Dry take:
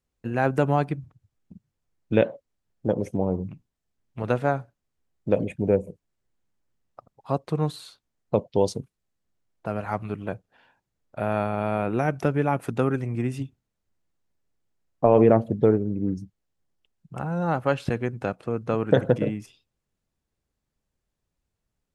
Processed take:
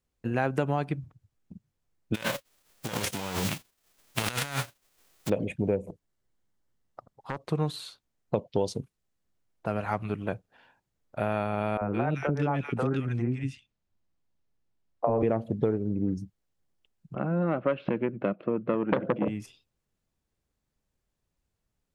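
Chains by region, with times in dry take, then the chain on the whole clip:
2.14–5.28 spectral whitening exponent 0.3 + dynamic EQ 1500 Hz, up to +4 dB, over -34 dBFS, Q 0.91 + negative-ratio compressor -33 dBFS
5.86–7.44 notch 2500 Hz + compressor 10:1, threshold -26 dBFS + Doppler distortion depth 0.94 ms
11.77–15.23 air absorption 80 m + three bands offset in time mids, lows, highs 40/170 ms, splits 470/1700 Hz
17.15–19.28 speaker cabinet 160–2700 Hz, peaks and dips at 200 Hz +9 dB, 330 Hz +8 dB, 590 Hz +7 dB, 860 Hz -8 dB, 1800 Hz -4 dB + core saturation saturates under 1000 Hz
whole clip: dynamic EQ 3100 Hz, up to +4 dB, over -47 dBFS, Q 1.2; compressor 4:1, threshold -23 dBFS

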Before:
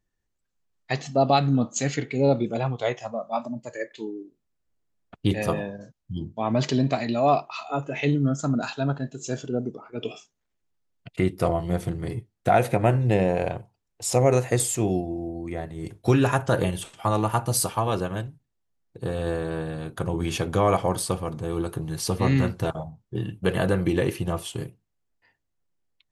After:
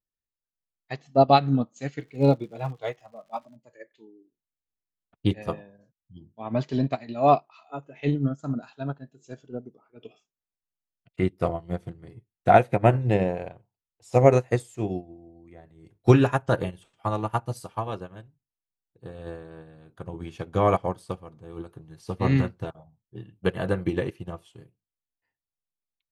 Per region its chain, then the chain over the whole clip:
1.99–3.55 comb 6.4 ms, depth 40% + crackle 210/s -32 dBFS
whole clip: LPF 4000 Hz 6 dB/oct; upward expander 2.5:1, over -31 dBFS; gain +6 dB

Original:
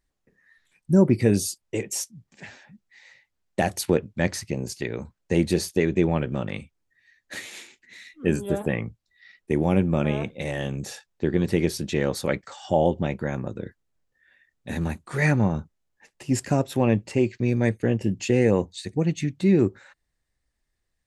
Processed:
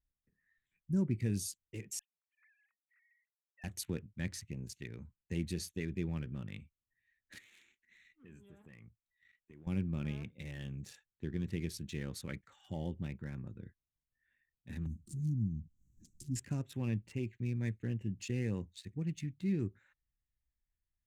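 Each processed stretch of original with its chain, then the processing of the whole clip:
1.99–3.64 sine-wave speech + HPF 1200 Hz 24 dB/oct + compressor 1.5:1, threshold -57 dBFS
7.38–9.67 low shelf 400 Hz -8.5 dB + sample leveller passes 1 + compressor 2.5:1, threshold -42 dBFS
14.86–16.36 inverse Chebyshev band-stop 540–3200 Hz + upward compressor, threshold -24 dBFS
whole clip: Wiener smoothing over 9 samples; passive tone stack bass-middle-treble 6-0-2; gain +3.5 dB

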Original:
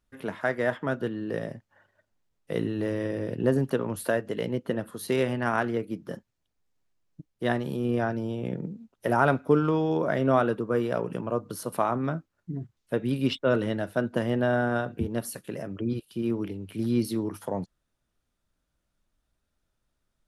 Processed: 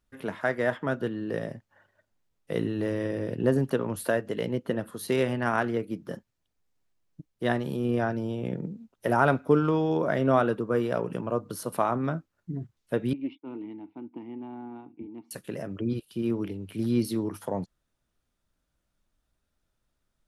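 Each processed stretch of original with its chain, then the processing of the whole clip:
13.13–15.31 vowel filter u + air absorption 160 m + Doppler distortion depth 0.12 ms
whole clip: dry

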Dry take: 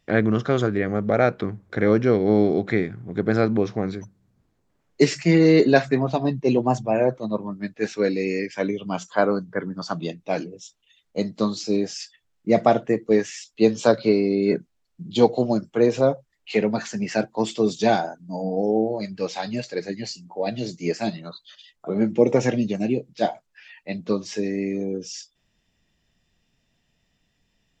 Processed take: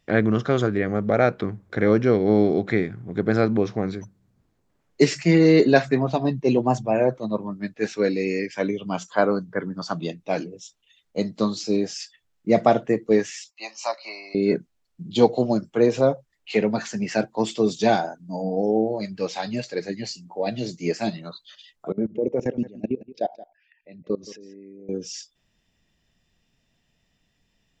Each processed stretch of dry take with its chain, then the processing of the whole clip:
13.5–14.35 HPF 570 Hz 24 dB/oct + fixed phaser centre 2300 Hz, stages 8
21.92–24.89 formant sharpening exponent 1.5 + level quantiser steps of 22 dB + echo 0.173 s -17.5 dB
whole clip: dry

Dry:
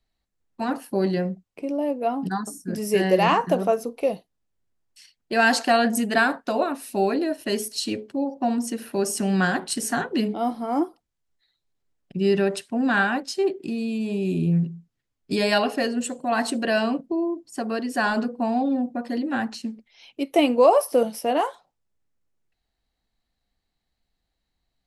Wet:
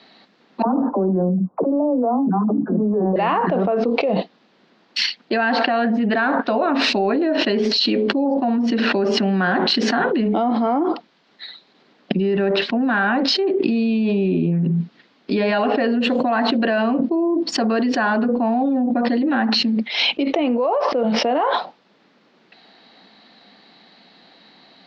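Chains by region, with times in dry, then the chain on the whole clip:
0.62–3.16 steep low-pass 1200 Hz 48 dB/oct + low shelf 190 Hz +9 dB + dispersion lows, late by 52 ms, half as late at 380 Hz
whole clip: treble ducked by the level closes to 2400 Hz, closed at -20.5 dBFS; elliptic band-pass 200–4300 Hz, stop band 40 dB; fast leveller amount 100%; gain -6 dB

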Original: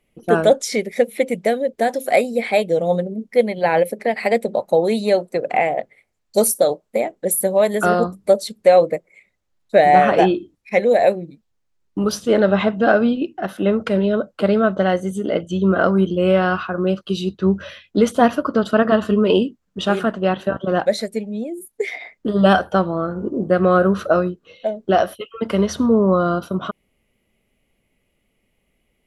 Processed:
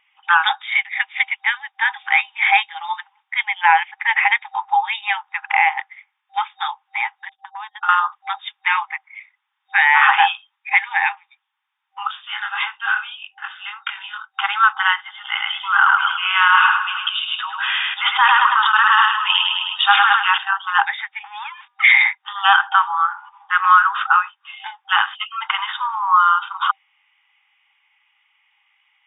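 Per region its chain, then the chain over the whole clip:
7.29–7.89 gate -19 dBFS, range -33 dB + bell 2100 Hz -10.5 dB 0.44 oct + compressor, threshold -26 dBFS
12.07–14.34 passive tone stack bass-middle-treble 10-0-10 + chorus 1.6 Hz, delay 19.5 ms, depth 5.6 ms
14.97–20.38 bell 260 Hz -9.5 dB 1.9 oct + feedback echo 0.104 s, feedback 47%, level -5.5 dB + sustainer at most 26 dB/s
21.24–22.15 sample leveller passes 2 + transient shaper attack -6 dB, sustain +5 dB + de-hum 241.6 Hz, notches 7
whole clip: FFT band-pass 780–3700 Hz; maximiser +13.5 dB; gain -1.5 dB

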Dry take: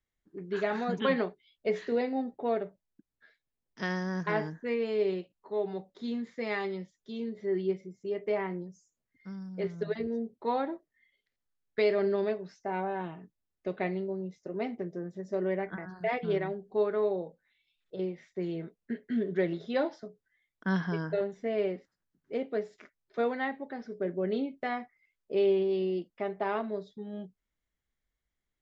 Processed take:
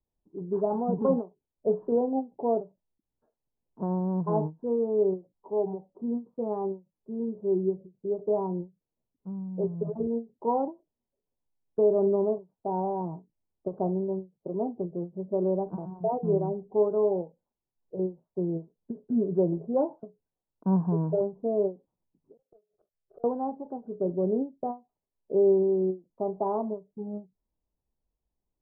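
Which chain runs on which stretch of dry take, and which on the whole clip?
22.37–23.24 flipped gate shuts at -32 dBFS, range -34 dB + sample leveller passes 2 + fixed phaser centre 960 Hz, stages 6
whole clip: dynamic EQ 150 Hz, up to +6 dB, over -54 dBFS, Q 3; elliptic low-pass 970 Hz, stop band 50 dB; ending taper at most 270 dB/s; gain +4 dB

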